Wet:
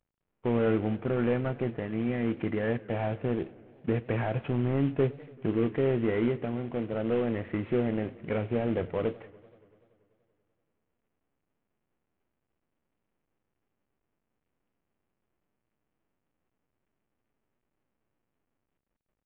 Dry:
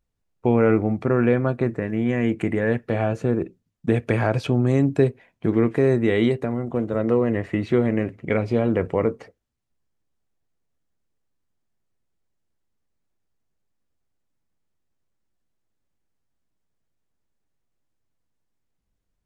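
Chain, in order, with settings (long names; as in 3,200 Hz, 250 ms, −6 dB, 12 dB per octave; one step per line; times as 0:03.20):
variable-slope delta modulation 16 kbit/s
feedback echo with a swinging delay time 96 ms, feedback 77%, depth 173 cents, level −22.5 dB
level −6.5 dB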